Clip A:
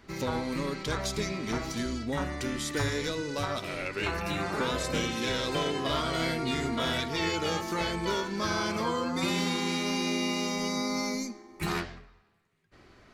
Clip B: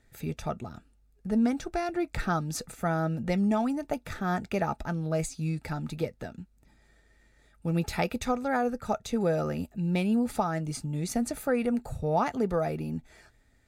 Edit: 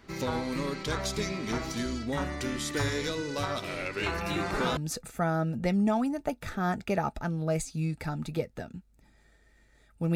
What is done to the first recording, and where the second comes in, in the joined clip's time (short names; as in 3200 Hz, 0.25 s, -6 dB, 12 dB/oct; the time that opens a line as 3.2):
clip A
4.36 add clip B from 2 s 0.41 s -6.5 dB
4.77 switch to clip B from 2.41 s